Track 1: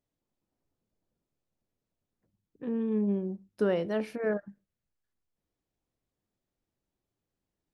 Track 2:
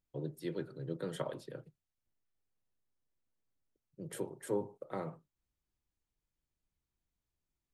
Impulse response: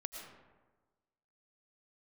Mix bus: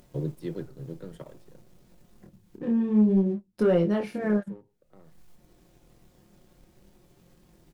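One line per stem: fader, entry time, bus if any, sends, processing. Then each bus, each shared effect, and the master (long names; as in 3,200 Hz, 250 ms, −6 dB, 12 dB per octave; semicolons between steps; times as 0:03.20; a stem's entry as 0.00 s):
+0.5 dB, 0.00 s, no send, comb filter 5.6 ms, depth 51%; upward compression, threshold −37 dBFS; chorus effect 0.55 Hz, depth 7.4 ms
+0.5 dB, 0.00 s, no send, low-shelf EQ 260 Hz +4.5 dB; automatic ducking −23 dB, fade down 2.00 s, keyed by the first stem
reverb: not used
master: leveller curve on the samples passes 1; low-shelf EQ 480 Hz +6.5 dB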